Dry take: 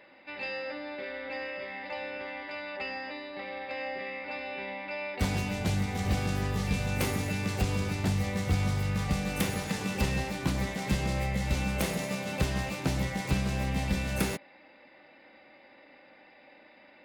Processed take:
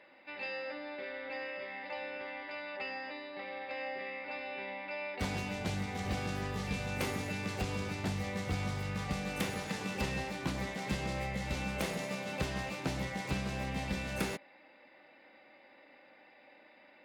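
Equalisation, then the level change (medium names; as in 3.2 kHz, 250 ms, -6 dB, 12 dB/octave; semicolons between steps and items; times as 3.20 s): bass shelf 170 Hz -8 dB; treble shelf 8.5 kHz -9 dB; -3.0 dB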